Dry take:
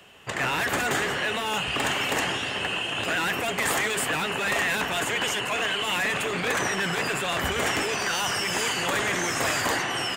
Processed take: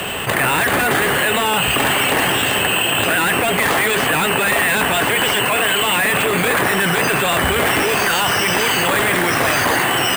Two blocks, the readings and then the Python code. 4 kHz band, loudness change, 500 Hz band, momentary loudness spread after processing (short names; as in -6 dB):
+9.0 dB, +10.0 dB, +10.5 dB, 1 LU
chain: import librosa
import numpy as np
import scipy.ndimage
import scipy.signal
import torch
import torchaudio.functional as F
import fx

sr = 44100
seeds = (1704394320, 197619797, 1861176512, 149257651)

y = fx.high_shelf(x, sr, hz=10000.0, db=-12.0)
y = np.repeat(scipy.signal.resample_poly(y, 1, 4), 4)[:len(y)]
y = fx.env_flatten(y, sr, amount_pct=70)
y = y * librosa.db_to_amplitude(8.5)